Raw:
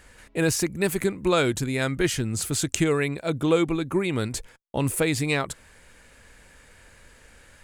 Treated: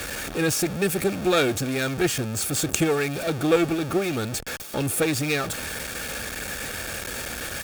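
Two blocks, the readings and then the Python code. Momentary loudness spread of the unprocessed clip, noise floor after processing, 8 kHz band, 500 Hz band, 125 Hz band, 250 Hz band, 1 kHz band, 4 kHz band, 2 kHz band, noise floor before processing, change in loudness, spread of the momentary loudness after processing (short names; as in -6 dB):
8 LU, -34 dBFS, +2.5 dB, +1.0 dB, -1.0 dB, +0.5 dB, +2.0 dB, +3.0 dB, +2.5 dB, -54 dBFS, 0.0 dB, 9 LU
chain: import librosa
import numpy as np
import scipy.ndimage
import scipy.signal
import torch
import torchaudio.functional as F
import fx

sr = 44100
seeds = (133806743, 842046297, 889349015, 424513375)

y = x + 0.5 * 10.0 ** (-16.5 / 20.0) * np.sign(x)
y = fx.cheby_harmonics(y, sr, harmonics=(6, 7), levels_db=(-18, -20), full_scale_db=-1.0)
y = fx.notch_comb(y, sr, f0_hz=1000.0)
y = F.gain(torch.from_numpy(y), 1.5).numpy()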